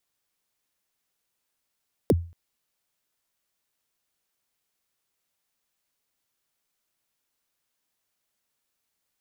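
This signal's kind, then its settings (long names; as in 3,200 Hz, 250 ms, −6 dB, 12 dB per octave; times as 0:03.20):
synth kick length 0.23 s, from 570 Hz, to 85 Hz, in 37 ms, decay 0.37 s, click on, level −12.5 dB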